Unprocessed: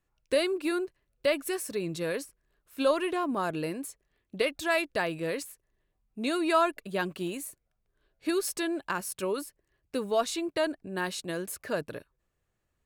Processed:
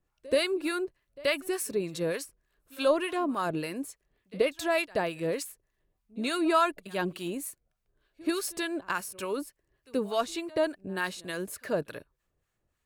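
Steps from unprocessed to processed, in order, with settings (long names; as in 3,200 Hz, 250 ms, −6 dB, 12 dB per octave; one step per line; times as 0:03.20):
echo ahead of the sound 80 ms −22.5 dB
two-band tremolo in antiphase 3.4 Hz, depth 70%, crossover 910 Hz
level +3.5 dB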